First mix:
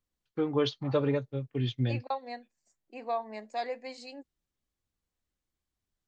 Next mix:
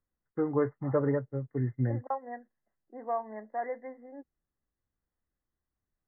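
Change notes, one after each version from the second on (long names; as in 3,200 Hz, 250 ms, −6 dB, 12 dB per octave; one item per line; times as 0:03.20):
master: add linear-phase brick-wall low-pass 2,100 Hz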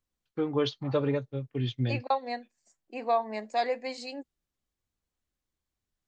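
second voice +6.0 dB
master: remove linear-phase brick-wall low-pass 2,100 Hz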